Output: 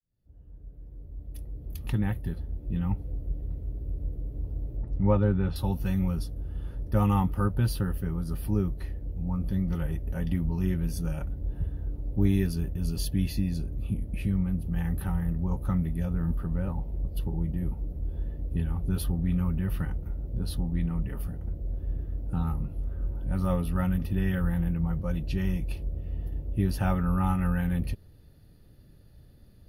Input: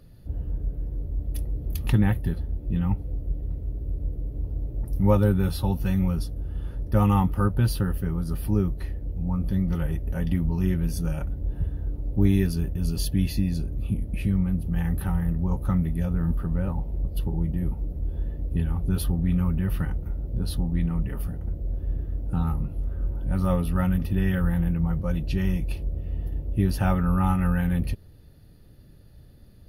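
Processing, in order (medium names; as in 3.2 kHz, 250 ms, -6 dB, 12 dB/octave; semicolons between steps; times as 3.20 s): fade-in on the opening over 3.00 s; 4.77–5.56 s: low-pass 2.8 kHz 12 dB/octave; trim -3.5 dB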